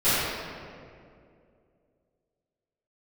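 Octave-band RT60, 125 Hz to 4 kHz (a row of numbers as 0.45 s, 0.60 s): 2.7 s, 2.8 s, 2.7 s, 2.0 s, 1.8 s, 1.3 s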